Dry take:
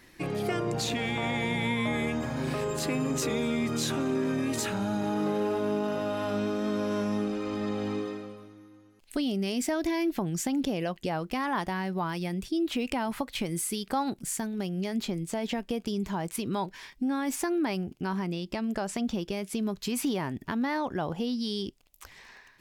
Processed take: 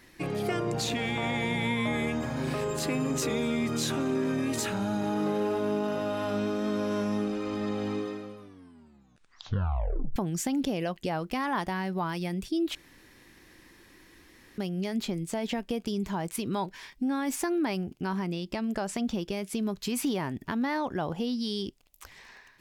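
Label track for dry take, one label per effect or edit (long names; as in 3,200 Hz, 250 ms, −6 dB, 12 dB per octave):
8.390000	8.390000	tape stop 1.77 s
12.750000	14.580000	fill with room tone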